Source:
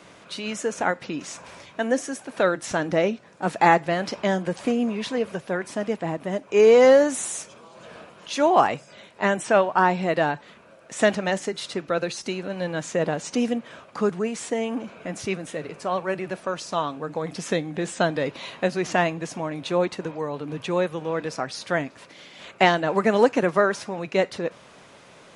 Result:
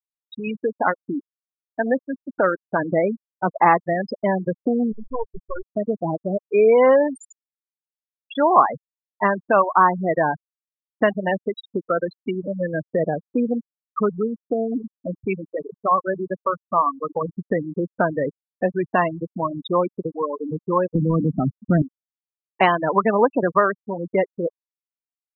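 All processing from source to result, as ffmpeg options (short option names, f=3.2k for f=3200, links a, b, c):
-filter_complex "[0:a]asettb=1/sr,asplit=3[a][b][c];[a]atrim=end=4.924[d];[b]atrim=start=4.92:end=5.77,asetpts=PTS-STARTPTS,afade=t=in:d=0.004:c=qsin,afade=t=out:st=0.846:d=0.004:c=qsin,agate=range=-33dB:threshold=-31dB:ratio=3:release=100:detection=peak,aeval=exprs='max(val(0),0)':c=same[e];[c]atrim=start=5.766[f];[d][e]acrossfade=d=0.004:c1=hsin:c2=qsin[g];[g][f]acrossfade=d=0.004:c1=qsin:c2=hsin,asettb=1/sr,asplit=3[h][i][j];[h]atrim=end=20.954[k];[i]atrim=start=20.95:end=21.82,asetpts=PTS-STARTPTS,afade=t=in:d=0.004:c=qsin,afade=t=out:st=0.866:d=0.004:c=qsin,aeval=exprs='val(0)+0.5*0.015*sgn(val(0))':c=same,lowpass=1.3k,lowshelf=f=340:t=q:w=1.5:g=12[l];[j]atrim=start=21.816[m];[k][l]acrossfade=d=0.004:c1=hsin:c2=qsin[n];[n][m]acrossfade=d=0.004:c1=qsin:c2=hsin,afftfilt=real='re*gte(hypot(re,im),0.141)':imag='im*gte(hypot(re,im),0.141)':win_size=1024:overlap=0.75,equalizer=f=1.1k:w=4.3:g=13,acompressor=threshold=-34dB:ratio=1.5,volume=7.5dB"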